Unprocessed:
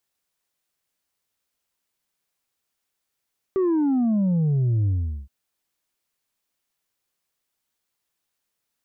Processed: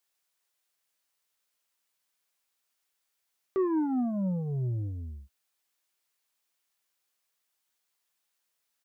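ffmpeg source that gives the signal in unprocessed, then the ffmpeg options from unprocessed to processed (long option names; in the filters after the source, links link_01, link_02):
-f lavfi -i "aevalsrc='0.119*clip((1.72-t)/0.41,0,1)*tanh(1.41*sin(2*PI*390*1.72/log(65/390)*(exp(log(65/390)*t/1.72)-1)))/tanh(1.41)':duration=1.72:sample_rate=44100"
-filter_complex "[0:a]lowshelf=frequency=370:gain=-12,asplit=2[link_01][link_02];[link_02]adelay=16,volume=-12dB[link_03];[link_01][link_03]amix=inputs=2:normalize=0"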